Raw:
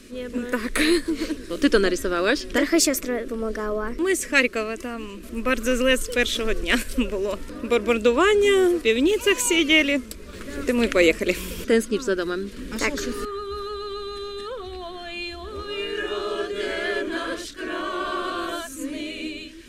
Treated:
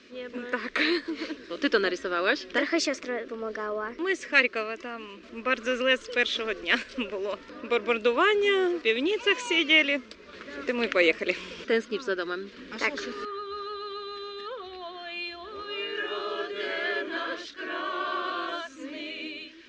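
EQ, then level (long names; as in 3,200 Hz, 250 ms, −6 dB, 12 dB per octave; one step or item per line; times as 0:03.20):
high-pass filter 720 Hz 6 dB per octave
low-pass filter 6,200 Hz 24 dB per octave
high-frequency loss of the air 120 metres
0.0 dB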